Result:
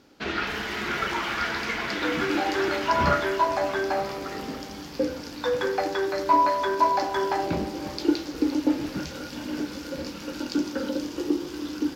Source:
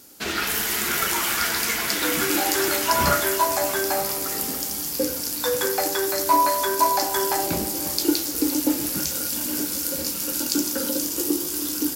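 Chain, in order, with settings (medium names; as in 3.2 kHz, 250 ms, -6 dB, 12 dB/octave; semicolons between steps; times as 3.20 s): distance through air 240 m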